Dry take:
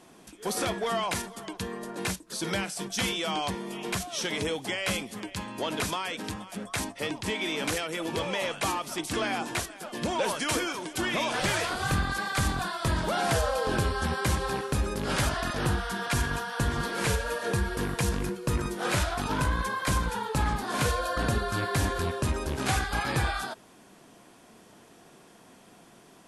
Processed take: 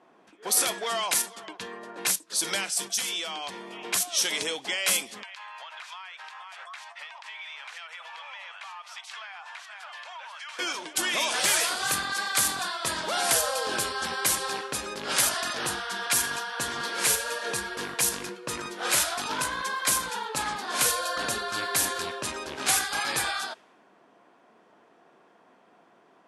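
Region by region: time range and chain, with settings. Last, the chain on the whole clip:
2.83–3.69 s: high-pass 57 Hz + treble shelf 11 kHz +9 dB + compression 16:1, threshold -30 dBFS
5.23–10.59 s: inverse Chebyshev high-pass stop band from 300 Hz, stop band 50 dB + compression 12:1, threshold -43 dBFS + overdrive pedal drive 12 dB, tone 6.7 kHz, clips at -23.5 dBFS
whole clip: RIAA curve recording; level-controlled noise filter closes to 1.2 kHz, open at -21 dBFS; bass shelf 110 Hz -11 dB

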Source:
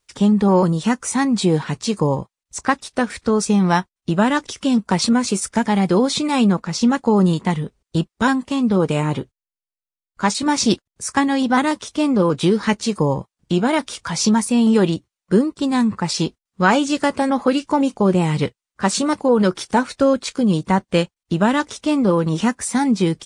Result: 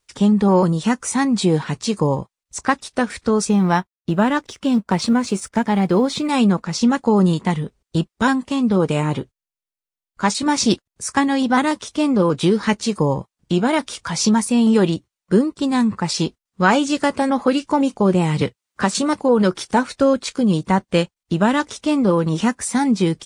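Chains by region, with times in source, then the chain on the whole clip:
3.49–6.29 s: companding laws mixed up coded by A + treble shelf 3.9 kHz -7.5 dB
18.41–18.95 s: high-pass 52 Hz + three bands compressed up and down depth 70%
whole clip: none

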